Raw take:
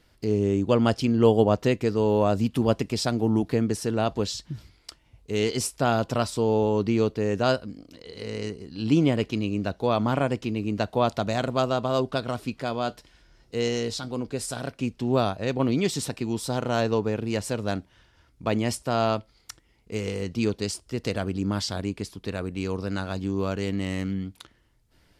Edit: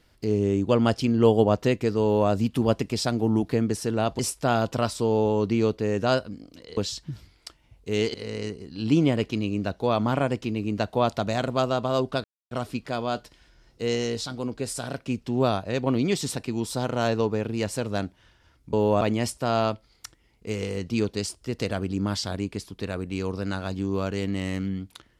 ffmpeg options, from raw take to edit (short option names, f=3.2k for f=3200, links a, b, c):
-filter_complex "[0:a]asplit=7[a][b][c][d][e][f][g];[a]atrim=end=4.192[h];[b]atrim=start=5.558:end=8.142[i];[c]atrim=start=4.188:end=5.562[j];[d]atrim=start=8.138:end=12.24,asetpts=PTS-STARTPTS,afade=t=out:st=4.098:d=0.004:c=hsin,apad=pad_dur=0.27[k];[e]atrim=start=12.24:end=18.462,asetpts=PTS-STARTPTS,afade=t=in:d=0.004:c=hsin[l];[f]atrim=start=2.018:end=2.302[m];[g]atrim=start=18.458[n];[h][i]acrossfade=d=0.004:c1=hsin:c2=hsin[o];[o][j]acrossfade=d=0.004:c1=hsin:c2=hsin[p];[k][l]concat=n=2:v=0:a=1[q];[p][q]acrossfade=d=0.004:c1=hsin:c2=hsin[r];[r][m]acrossfade=d=0.004:c1=hsin:c2=hsin[s];[s][n]acrossfade=d=0.004:c1=hsin:c2=hsin"